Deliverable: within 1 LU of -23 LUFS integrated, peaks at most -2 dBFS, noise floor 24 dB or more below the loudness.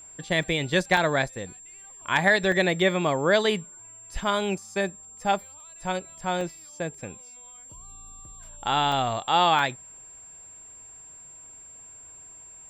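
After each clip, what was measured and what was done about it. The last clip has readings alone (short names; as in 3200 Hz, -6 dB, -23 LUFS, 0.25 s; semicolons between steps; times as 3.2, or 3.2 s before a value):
dropouts 6; longest dropout 2.0 ms; steady tone 7400 Hz; tone level -44 dBFS; loudness -25.0 LUFS; peak -8.5 dBFS; loudness target -23.0 LUFS
-> interpolate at 0.43/0.97/2.52/6.41/8.92/9.59, 2 ms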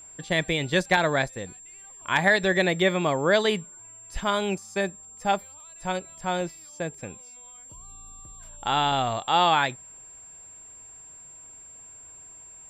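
dropouts 0; steady tone 7400 Hz; tone level -44 dBFS
-> notch 7400 Hz, Q 30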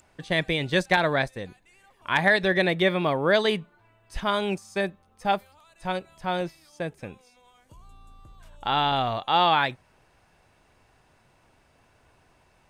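steady tone none; loudness -25.0 LUFS; peak -8.5 dBFS; loudness target -23.0 LUFS
-> gain +2 dB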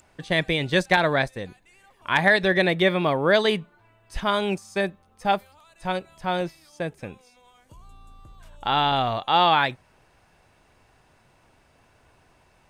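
loudness -23.0 LUFS; peak -6.5 dBFS; noise floor -61 dBFS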